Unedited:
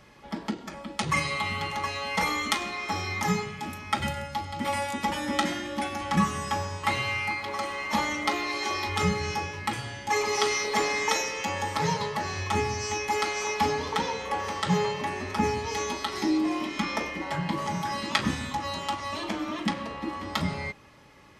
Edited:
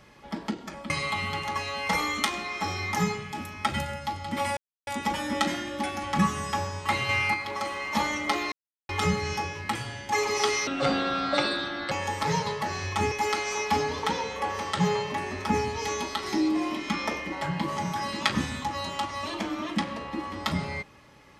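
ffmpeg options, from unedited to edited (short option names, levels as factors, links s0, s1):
-filter_complex "[0:a]asplit=10[s0][s1][s2][s3][s4][s5][s6][s7][s8][s9];[s0]atrim=end=0.902[s10];[s1]atrim=start=1.178:end=4.85,asetpts=PTS-STARTPTS,afade=t=out:st=3.668:d=0.004:c=hsin,apad=pad_dur=0.3[s11];[s2]atrim=start=4.85:end=7.072,asetpts=PTS-STARTPTS,afade=t=in:d=0.004:c=hsin[s12];[s3]atrim=start=7.068:end=7.322,asetpts=PTS-STARTPTS,volume=1.58[s13];[s4]atrim=start=7.318:end=8.5,asetpts=PTS-STARTPTS,afade=t=out:st=1.178:d=0.004:c=hsin[s14];[s5]atrim=start=8.5:end=8.87,asetpts=PTS-STARTPTS,volume=0[s15];[s6]atrim=start=8.87:end=10.654,asetpts=PTS-STARTPTS,afade=t=in:d=0.004:c=hsin[s16];[s7]atrim=start=10.65:end=11.46,asetpts=PTS-STARTPTS,asetrate=28665,aresample=44100,atrim=end_sample=54955,asetpts=PTS-STARTPTS[s17];[s8]atrim=start=11.456:end=12.662[s18];[s9]atrim=start=13.008[s19];[s11][s12]concat=n=2:v=0:a=1[s20];[s10][s20]acrossfade=d=0.004:c1=hsin:c2=hsin[s21];[s21][s13]acrossfade=d=0.004:c1=hsin:c2=hsin[s22];[s14][s15][s16]concat=n=3:v=0:a=1[s23];[s22][s23]acrossfade=d=0.004:c1=hsin:c2=hsin[s24];[s24][s17]acrossfade=d=0.004:c1=hsin:c2=hsin[s25];[s25][s18]acrossfade=d=0.004:c1=hsin:c2=hsin[s26];[s26][s19]acrossfade=d=0.004:c1=hsin:c2=hsin"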